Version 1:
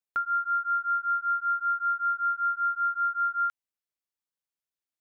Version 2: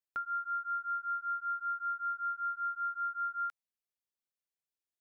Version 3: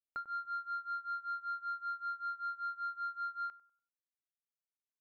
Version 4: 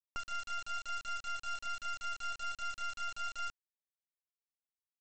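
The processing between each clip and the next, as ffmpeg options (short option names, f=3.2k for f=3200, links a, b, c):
-af "equalizer=f=1.3k:w=1.5:g=-3.5,volume=-5dB"
-filter_complex "[0:a]aeval=exprs='sgn(val(0))*max(abs(val(0))-0.00133,0)':c=same,asplit=2[a][b];[b]adelay=97,lowpass=f=1.2k:p=1,volume=-12dB,asplit=2[c][d];[d]adelay=97,lowpass=f=1.2k:p=1,volume=0.43,asplit=2[e][f];[f]adelay=97,lowpass=f=1.2k:p=1,volume=0.43,asplit=2[g][h];[h]adelay=97,lowpass=f=1.2k:p=1,volume=0.43[i];[a][c][e][g][i]amix=inputs=5:normalize=0,adynamicsmooth=sensitivity=1.5:basefreq=1.1k"
-af "lowpass=f=1.8k:w=0.5412,lowpass=f=1.8k:w=1.3066,aresample=16000,acrusher=bits=5:dc=4:mix=0:aa=0.000001,aresample=44100,volume=4.5dB"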